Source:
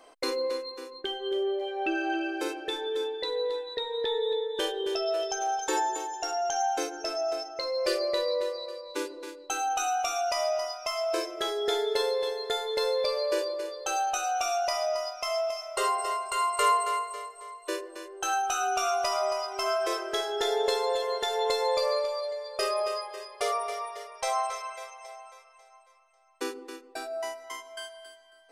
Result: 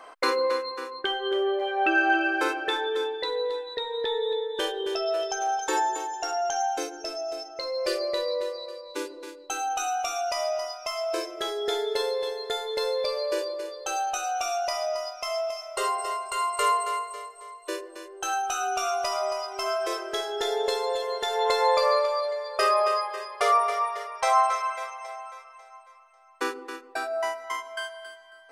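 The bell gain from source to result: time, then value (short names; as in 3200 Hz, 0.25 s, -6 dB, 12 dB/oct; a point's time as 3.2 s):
bell 1300 Hz 1.8 oct
2.72 s +14 dB
3.51 s +4 dB
6.44 s +4 dB
7.27 s -7 dB
7.68 s 0 dB
21.16 s 0 dB
21.59 s +11 dB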